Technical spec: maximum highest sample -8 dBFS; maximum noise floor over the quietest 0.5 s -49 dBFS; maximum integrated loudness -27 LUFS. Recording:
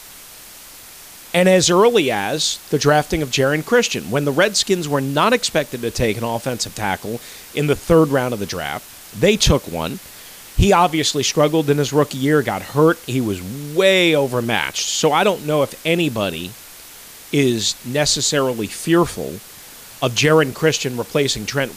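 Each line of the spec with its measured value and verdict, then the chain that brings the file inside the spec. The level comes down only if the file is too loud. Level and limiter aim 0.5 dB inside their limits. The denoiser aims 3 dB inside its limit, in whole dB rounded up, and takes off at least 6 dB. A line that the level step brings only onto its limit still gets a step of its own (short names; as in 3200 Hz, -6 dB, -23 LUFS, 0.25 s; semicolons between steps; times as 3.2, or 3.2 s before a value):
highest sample -3.0 dBFS: fail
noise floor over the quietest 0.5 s -40 dBFS: fail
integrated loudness -17.5 LUFS: fail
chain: gain -10 dB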